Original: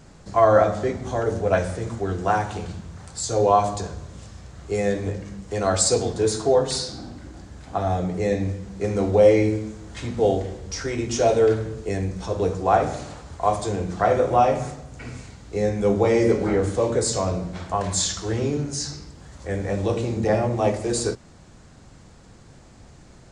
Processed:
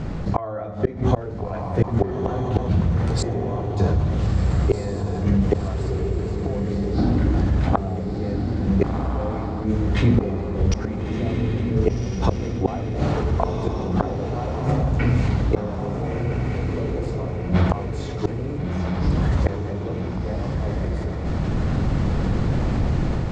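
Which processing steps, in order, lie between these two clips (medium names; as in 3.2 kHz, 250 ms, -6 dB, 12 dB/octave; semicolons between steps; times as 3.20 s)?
level rider gain up to 14.5 dB; inverted gate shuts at -12 dBFS, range -34 dB; low-pass 3.2 kHz 12 dB/octave; bass shelf 380 Hz +8 dB; band-stop 1.6 kHz, Q 24; echo that smears into a reverb 1413 ms, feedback 43%, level -9 dB; level flattener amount 50%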